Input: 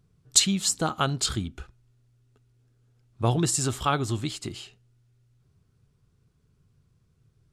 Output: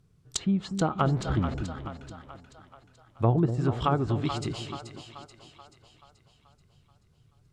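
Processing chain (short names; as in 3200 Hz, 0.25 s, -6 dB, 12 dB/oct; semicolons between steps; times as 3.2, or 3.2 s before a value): 0.99–1.54 zero-crossing step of -31 dBFS; treble ducked by the level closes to 890 Hz, closed at -20.5 dBFS; split-band echo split 530 Hz, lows 0.243 s, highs 0.432 s, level -8.5 dB; gain +1 dB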